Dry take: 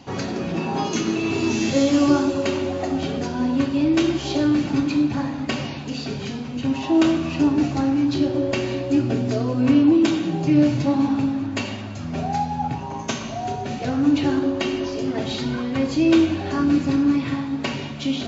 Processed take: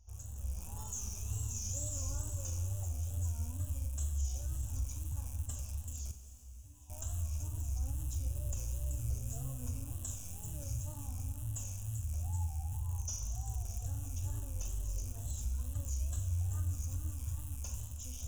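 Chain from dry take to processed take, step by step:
loose part that buzzes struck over −32 dBFS, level −22 dBFS
inverse Chebyshev band-stop filter 140–4,800 Hz, stop band 40 dB
automatic gain control gain up to 9 dB
brickwall limiter −33 dBFS, peak gain reduction 8.5 dB
tape wow and flutter 130 cents
0:06.11–0:06.90: tuned comb filter 59 Hz, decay 1.1 s, harmonics odd, mix 90%
on a send: flutter between parallel walls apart 7.7 metres, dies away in 0.22 s
on the sum: dense smooth reverb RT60 3 s, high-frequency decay 1×, DRR 9 dB
level +3.5 dB

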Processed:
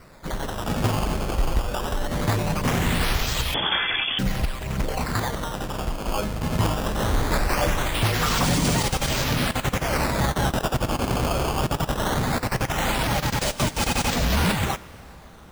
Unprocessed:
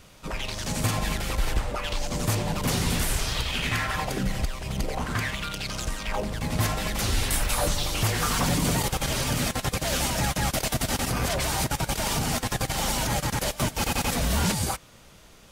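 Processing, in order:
sample-and-hold swept by an LFO 13×, swing 160% 0.2 Hz
dense smooth reverb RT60 4.8 s, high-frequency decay 0.75×, DRR 19 dB
0:03.54–0:04.19: voice inversion scrambler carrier 3,400 Hz
level +3 dB

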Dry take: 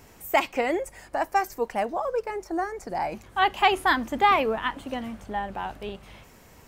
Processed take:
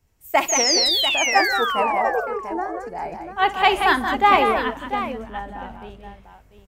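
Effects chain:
sound drawn into the spectrogram fall, 0:00.48–0:02.08, 660–6,900 Hz −26 dBFS
on a send: multi-tap delay 57/150/181/692 ms −15.5/−16.5/−5/−6.5 dB
on the sum: multiband upward and downward expander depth 70%
level +1.5 dB

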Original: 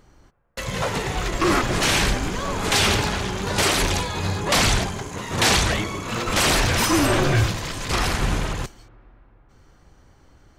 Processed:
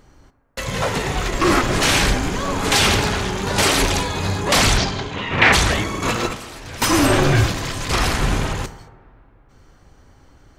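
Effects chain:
0:04.77–0:05.52: low-pass with resonance 5,600 Hz → 2,000 Hz, resonance Q 2.8
0:06.02–0:06.82: compressor whose output falls as the input rises −28 dBFS, ratio −0.5
convolution reverb RT60 1.4 s, pre-delay 4 ms, DRR 11.5 dB
level +3 dB

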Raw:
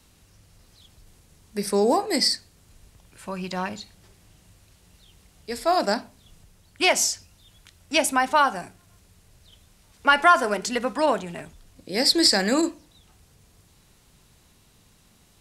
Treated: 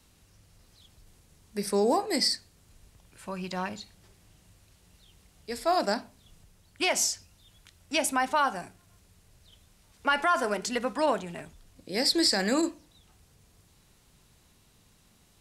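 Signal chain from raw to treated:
brickwall limiter −11 dBFS, peak gain reduction 6.5 dB
level −4 dB

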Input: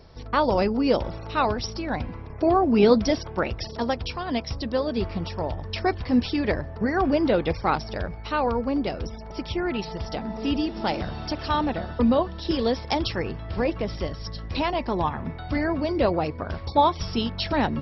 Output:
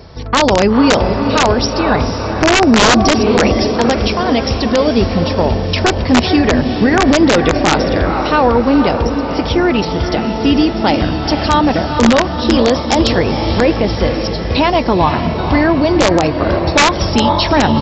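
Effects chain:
high-pass filter 51 Hz 12 dB per octave
low-shelf EQ 65 Hz +3 dB
feedback delay with all-pass diffusion 482 ms, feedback 56%, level −8 dB
wrap-around overflow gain 12.5 dB
downsampling to 16,000 Hz
boost into a limiter +14.5 dB
level −1 dB

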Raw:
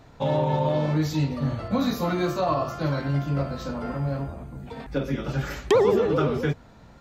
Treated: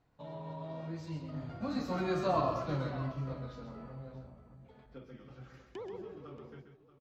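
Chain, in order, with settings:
source passing by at 0:02.35, 21 m/s, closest 7.4 metres
high-frequency loss of the air 64 metres
multi-tap delay 132/631 ms −7.5/−15 dB
level −6 dB

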